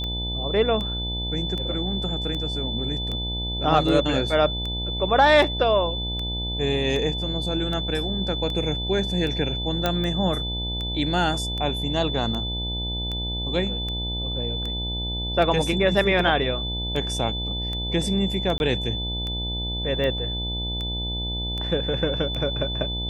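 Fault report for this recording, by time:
mains buzz 60 Hz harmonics 16 −30 dBFS
scratch tick 78 rpm −19 dBFS
whistle 3,500 Hz −29 dBFS
0:09.86: click −8 dBFS
0:18.58–0:18.60: drop-out 21 ms

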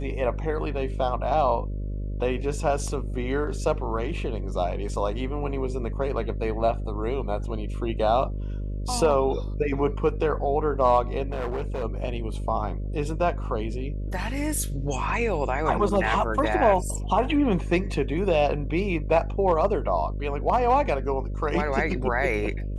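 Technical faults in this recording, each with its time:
mains buzz 50 Hz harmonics 12 −30 dBFS
0:11.30–0:11.84: clipping −25 dBFS

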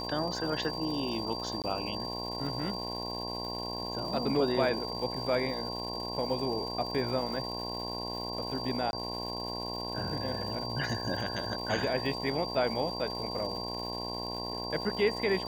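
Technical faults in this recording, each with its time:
mains buzz 60 Hz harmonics 18 −39 dBFS
surface crackle 360 per second −41 dBFS
whistle 4,700 Hz −38 dBFS
0:01.62–0:01.64: drop-out 18 ms
0:08.91–0:08.93: drop-out 21 ms

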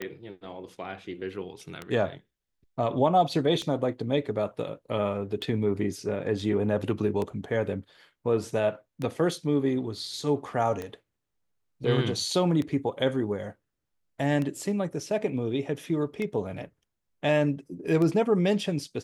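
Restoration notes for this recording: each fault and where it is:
scratch tick 33 1/3 rpm −19 dBFS

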